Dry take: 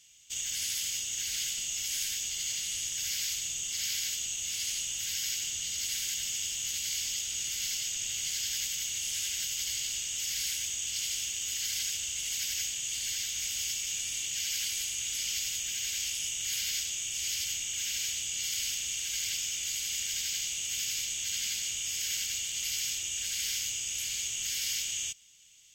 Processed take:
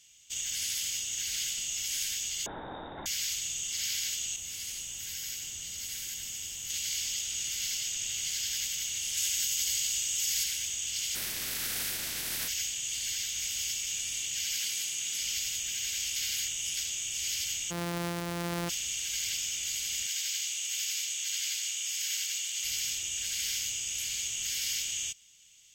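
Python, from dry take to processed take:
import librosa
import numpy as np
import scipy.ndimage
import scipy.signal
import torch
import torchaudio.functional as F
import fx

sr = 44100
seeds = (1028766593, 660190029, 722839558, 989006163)

y = fx.freq_invert(x, sr, carrier_hz=3700, at=(2.46, 3.06))
y = fx.peak_eq(y, sr, hz=3800.0, db=-6.5, octaves=2.7, at=(4.36, 6.7))
y = fx.high_shelf(y, sr, hz=5800.0, db=6.5, at=(9.17, 10.44))
y = fx.spec_clip(y, sr, under_db=28, at=(11.14, 12.47), fade=0.02)
y = fx.highpass(y, sr, hz=120.0, slope=24, at=(14.57, 15.21))
y = fx.sample_sort(y, sr, block=256, at=(17.7, 18.68), fade=0.02)
y = fx.highpass(y, sr, hz=980.0, slope=12, at=(20.07, 22.64))
y = fx.edit(y, sr, fx.reverse_span(start_s=16.16, length_s=0.61), tone=tone)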